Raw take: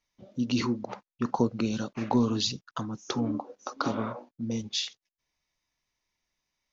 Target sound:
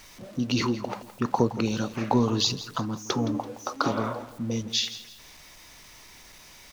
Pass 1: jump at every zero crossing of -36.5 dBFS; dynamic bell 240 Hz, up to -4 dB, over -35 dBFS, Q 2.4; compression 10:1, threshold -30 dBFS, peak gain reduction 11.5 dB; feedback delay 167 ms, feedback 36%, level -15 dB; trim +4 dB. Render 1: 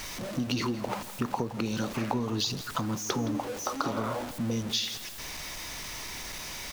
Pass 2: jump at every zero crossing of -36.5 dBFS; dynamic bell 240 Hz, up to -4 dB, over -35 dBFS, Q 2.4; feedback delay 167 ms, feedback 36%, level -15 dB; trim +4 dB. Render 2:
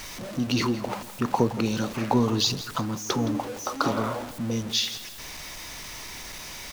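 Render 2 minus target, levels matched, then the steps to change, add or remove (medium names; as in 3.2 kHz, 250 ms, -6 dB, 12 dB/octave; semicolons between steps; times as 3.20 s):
jump at every zero crossing: distortion +10 dB
change: jump at every zero crossing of -47.5 dBFS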